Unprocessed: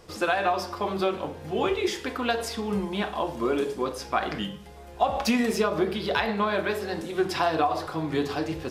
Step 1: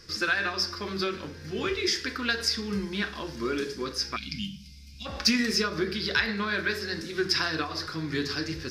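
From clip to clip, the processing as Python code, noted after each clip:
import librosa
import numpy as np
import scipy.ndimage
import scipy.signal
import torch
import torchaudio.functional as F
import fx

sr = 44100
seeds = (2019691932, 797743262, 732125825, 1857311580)

y = fx.spec_box(x, sr, start_s=4.16, length_s=0.9, low_hz=290.0, high_hz=2100.0, gain_db=-25)
y = fx.curve_eq(y, sr, hz=(100.0, 390.0, 760.0, 1600.0, 3200.0, 5100.0, 7600.0), db=(0, -4, -18, 5, -2, 13, -3))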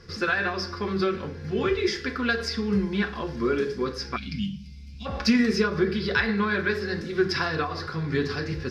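y = fx.lowpass(x, sr, hz=1400.0, slope=6)
y = fx.notch_comb(y, sr, f0_hz=310.0)
y = F.gain(torch.from_numpy(y), 7.0).numpy()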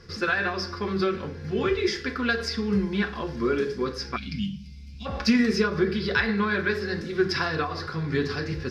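y = fx.attack_slew(x, sr, db_per_s=420.0)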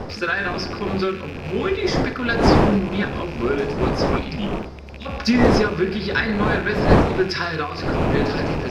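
y = fx.rattle_buzz(x, sr, strikes_db=-37.0, level_db=-28.0)
y = fx.dmg_wind(y, sr, seeds[0], corner_hz=530.0, level_db=-25.0)
y = F.gain(torch.from_numpy(y), 2.5).numpy()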